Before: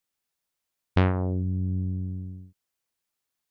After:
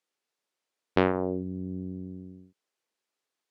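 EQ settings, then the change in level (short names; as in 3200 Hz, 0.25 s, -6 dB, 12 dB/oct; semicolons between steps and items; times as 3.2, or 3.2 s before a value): HPF 240 Hz 12 dB/oct; air absorption 52 m; bell 420 Hz +5 dB 0.97 oct; +1.5 dB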